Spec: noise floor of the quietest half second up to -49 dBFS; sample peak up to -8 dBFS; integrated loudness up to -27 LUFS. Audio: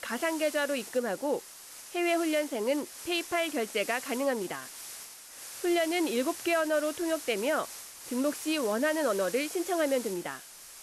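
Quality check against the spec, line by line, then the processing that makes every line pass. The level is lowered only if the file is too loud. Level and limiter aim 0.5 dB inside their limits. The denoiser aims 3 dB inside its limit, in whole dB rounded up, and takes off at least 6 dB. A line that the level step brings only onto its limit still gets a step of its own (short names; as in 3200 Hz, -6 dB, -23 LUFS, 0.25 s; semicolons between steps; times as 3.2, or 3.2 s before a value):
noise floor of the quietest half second -48 dBFS: fail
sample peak -17.5 dBFS: OK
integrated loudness -30.0 LUFS: OK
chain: denoiser 6 dB, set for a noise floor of -48 dBFS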